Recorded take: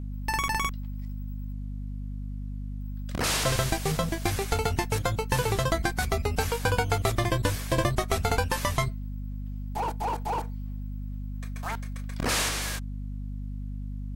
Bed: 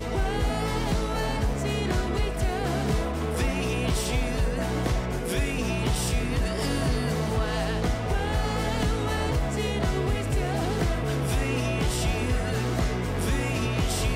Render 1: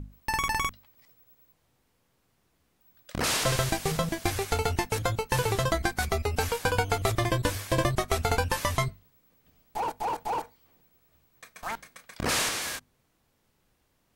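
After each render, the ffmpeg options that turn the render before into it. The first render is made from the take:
-af "bandreject=f=50:t=h:w=6,bandreject=f=100:t=h:w=6,bandreject=f=150:t=h:w=6,bandreject=f=200:t=h:w=6,bandreject=f=250:t=h:w=6"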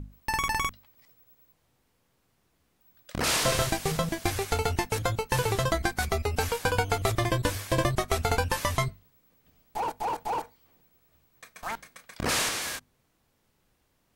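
-filter_complex "[0:a]asettb=1/sr,asplit=3[a][b][c];[a]atrim=end=3.244[d];[b]atrim=start=3.24:end=3.67,asetpts=PTS-STARTPTS,afade=t=in:d=0.004:c=qsin,afade=t=out:st=0.426:d=0.004:c=qsin,asplit=2[e][f];[f]adelay=27,volume=-4dB[g];[e][g]amix=inputs=2:normalize=0,atrim=end_sample=18963[h];[c]atrim=start=3.666[i];[d][h]acrossfade=d=0.004:c1=hsin:c2=qsin[j];[j][i]acrossfade=d=0.004:c1=qsin:c2=hsin"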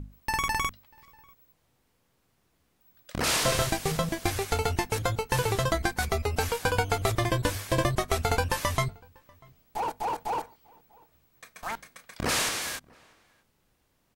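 -filter_complex "[0:a]asplit=2[a][b];[b]adelay=641.4,volume=-27dB,highshelf=f=4k:g=-14.4[c];[a][c]amix=inputs=2:normalize=0"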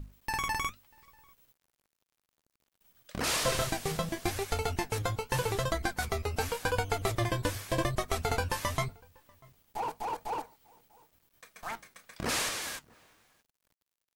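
-af "flanger=delay=1.6:depth=8.8:regen=67:speed=0.88:shape=sinusoidal,acrusher=bits=10:mix=0:aa=0.000001"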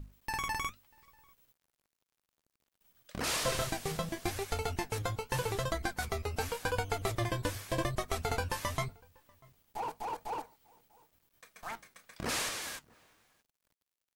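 -af "volume=-3dB"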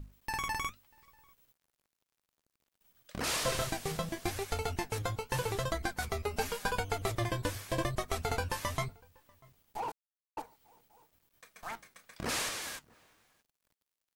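-filter_complex "[0:a]asettb=1/sr,asplit=3[a][b][c];[a]atrim=end=6.244[d];[b]atrim=start=6.24:end=6.8,asetpts=PTS-STARTPTS,afade=t=in:d=0.004:c=qsin,afade=t=out:st=0.556:d=0.004:c=qsin,aecho=1:1:4.9:0.65,atrim=end_sample=24696[e];[c]atrim=start=6.796[f];[d][e]acrossfade=d=0.004:c1=hsin:c2=qsin[g];[g][f]acrossfade=d=0.004:c1=qsin:c2=hsin,asplit=3[h][i][j];[h]atrim=end=9.92,asetpts=PTS-STARTPTS,afade=t=out:st=9.916:d=0.004:c=hsin[k];[i]atrim=start=9.92:end=10.37,asetpts=PTS-STARTPTS,volume=0[l];[j]atrim=start=10.37,asetpts=PTS-STARTPTS,afade=t=in:d=0.004:c=hsin[m];[k][l][m]concat=n=3:v=0:a=1"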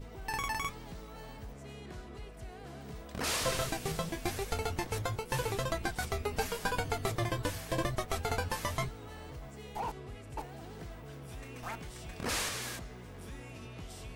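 -filter_complex "[1:a]volume=-20dB[a];[0:a][a]amix=inputs=2:normalize=0"

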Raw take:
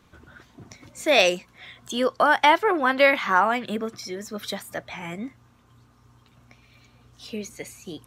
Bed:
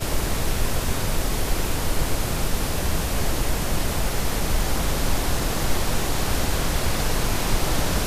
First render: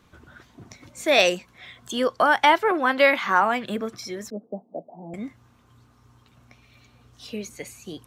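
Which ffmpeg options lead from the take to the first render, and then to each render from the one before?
-filter_complex "[0:a]asettb=1/sr,asplit=3[a][b][c];[a]atrim=end=2.714[d];[b]atrim=start=2.71:end=3.42,asetpts=PTS-STARTPTS,afade=t=in:d=0.004:c=qsin,afade=t=out:st=0.706:d=0.004:c=qsin,highpass=150[e];[c]atrim=start=3.416[f];[d][e]acrossfade=d=0.004:c1=hsin:c2=qsin[g];[g][f]acrossfade=d=0.004:c1=qsin:c2=hsin,asettb=1/sr,asplit=3[h][i][j];[h]atrim=end=4.304[k];[i]atrim=start=4.3:end=5.14,asetpts=PTS-STARTPTS,afade=t=in:d=0.004:c=qsin,afade=t=out:st=0.836:d=0.004:c=qsin,asuperpass=centerf=360:order=12:qfactor=0.6[l];[j]atrim=start=5.136[m];[k][l]acrossfade=d=0.004:c1=hsin:c2=qsin[n];[n][m]acrossfade=d=0.004:c1=qsin:c2=hsin"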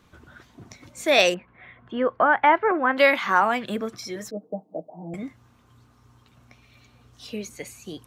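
-filter_complex "[0:a]asettb=1/sr,asplit=3[a][b][c];[a]atrim=end=1.344[d];[b]atrim=start=1.34:end=2.97,asetpts=PTS-STARTPTS,afade=t=in:d=0.004:c=qsin,afade=t=out:st=1.626:d=0.004:c=qsin,lowpass=f=2.2k:w=0.5412,lowpass=f=2.2k:w=1.3066[e];[c]atrim=start=2.966[f];[d][e]acrossfade=d=0.004:c1=hsin:c2=qsin[g];[g][f]acrossfade=d=0.004:c1=qsin:c2=hsin,asettb=1/sr,asplit=3[h][i][j];[h]atrim=end=4.154[k];[i]atrim=start=4.15:end=5.23,asetpts=PTS-STARTPTS,afade=t=in:d=0.004:c=qsin,afade=t=out:st=1.076:d=0.004:c=qsin,aecho=1:1:6.4:0.65,atrim=end_sample=47628[l];[j]atrim=start=5.226[m];[k][l]acrossfade=d=0.004:c1=hsin:c2=qsin[n];[n][m]acrossfade=d=0.004:c1=qsin:c2=hsin"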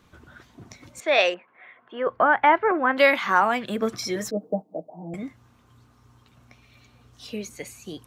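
-filter_complex "[0:a]asettb=1/sr,asplit=3[a][b][c];[a]atrim=end=1.004[d];[b]atrim=start=1:end=2.07,asetpts=PTS-STARTPTS,afade=t=in:d=0.004:c=qsin,afade=t=out:st=1.066:d=0.004:c=qsin,highpass=450,lowpass=3.2k[e];[c]atrim=start=2.066[f];[d][e]acrossfade=d=0.004:c1=hsin:c2=qsin[g];[g][f]acrossfade=d=0.004:c1=qsin:c2=hsin,asettb=1/sr,asplit=3[h][i][j];[h]atrim=end=3.824[k];[i]atrim=start=3.82:end=4.62,asetpts=PTS-STARTPTS,afade=t=in:d=0.004:c=qsin,afade=t=out:st=0.796:d=0.004:c=qsin,acontrast=41[l];[j]atrim=start=4.616[m];[k][l]acrossfade=d=0.004:c1=hsin:c2=qsin[n];[n][m]acrossfade=d=0.004:c1=qsin:c2=hsin"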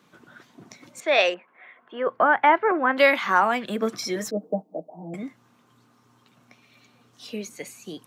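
-af "highpass=f=150:w=0.5412,highpass=f=150:w=1.3066"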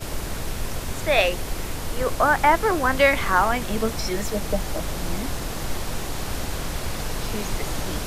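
-filter_complex "[1:a]volume=-5.5dB[a];[0:a][a]amix=inputs=2:normalize=0"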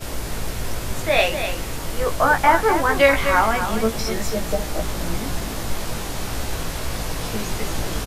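-filter_complex "[0:a]asplit=2[a][b];[b]adelay=18,volume=-4dB[c];[a][c]amix=inputs=2:normalize=0,asplit=2[d][e];[e]aecho=0:1:248:0.376[f];[d][f]amix=inputs=2:normalize=0"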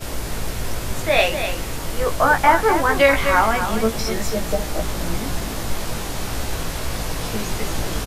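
-af "volume=1dB,alimiter=limit=-3dB:level=0:latency=1"

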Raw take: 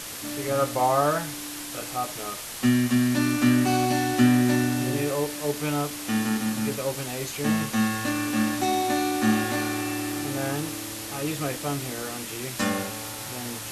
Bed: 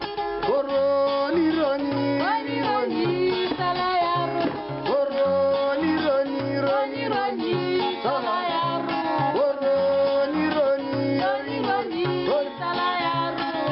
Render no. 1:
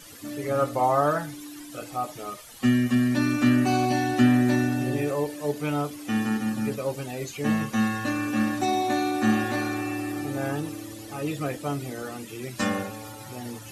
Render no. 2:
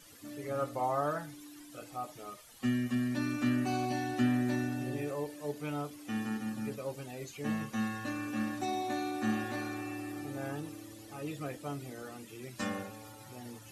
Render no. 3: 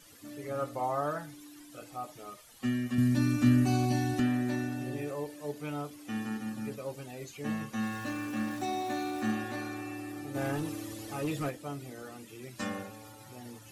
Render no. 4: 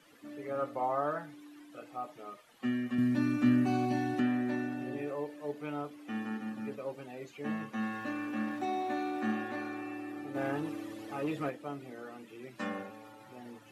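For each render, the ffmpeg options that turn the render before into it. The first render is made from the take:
-af "afftdn=nr=14:nf=-36"
-af "volume=-10dB"
-filter_complex "[0:a]asettb=1/sr,asplit=3[a][b][c];[a]atrim=end=2.984[d];[b]atrim=start=2.98:end=4.2,asetpts=PTS-STARTPTS,afade=t=in:d=0.004:c=qsin,afade=t=out:st=1.216:d=0.004:c=qsin,bass=f=250:g=12,treble=f=4k:g=6[e];[c]atrim=start=4.196[f];[d][e]acrossfade=d=0.004:c1=hsin:c2=qsin[g];[g][f]acrossfade=d=0.004:c1=qsin:c2=hsin,asettb=1/sr,asplit=3[h][i][j];[h]atrim=end=7.834[k];[i]atrim=start=7.83:end=9.32,asetpts=PTS-STARTPTS,afade=t=in:d=0.004:c=qsin,afade=t=out:st=1.486:d=0.004:c=qsin,aeval=exprs='val(0)+0.5*0.00562*sgn(val(0))':c=same[l];[j]atrim=start=9.316[m];[k][l]acrossfade=d=0.004:c1=hsin:c2=qsin[n];[n][m]acrossfade=d=0.004:c1=qsin:c2=hsin,asplit=3[o][p][q];[o]afade=t=out:st=10.34:d=0.02[r];[p]aeval=exprs='0.0422*sin(PI/2*1.58*val(0)/0.0422)':c=same,afade=t=in:st=10.34:d=0.02,afade=t=out:st=11.49:d=0.02[s];[q]afade=t=in:st=11.49:d=0.02[t];[r][s][t]amix=inputs=3:normalize=0"
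-filter_complex "[0:a]acrossover=split=160 3200:gain=0.126 1 0.2[a][b][c];[a][b][c]amix=inputs=3:normalize=0"

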